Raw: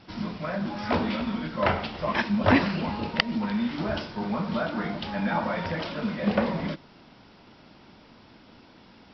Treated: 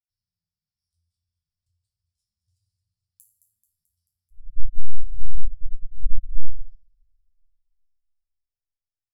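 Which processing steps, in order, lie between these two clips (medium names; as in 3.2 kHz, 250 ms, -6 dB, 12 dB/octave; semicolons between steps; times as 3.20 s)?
tracing distortion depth 0.097 ms; high-pass 190 Hz 12 dB/octave; peaking EQ 950 Hz -2 dB 0.4 oct; feedback delay 218 ms, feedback 56%, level -10 dB; flange 0.68 Hz, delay 6.2 ms, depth 8.7 ms, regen +23%; 4.30–6.40 s: LPC vocoder at 8 kHz whisper; inverse Chebyshev band-stop 240–2100 Hz, stop band 80 dB; bass shelf 450 Hz +10 dB; chord resonator F2 major, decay 0.37 s; simulated room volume 1200 m³, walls mixed, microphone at 0.85 m; loudness maximiser +27.5 dB; upward expansion 2.5:1, over -17 dBFS; trim -2.5 dB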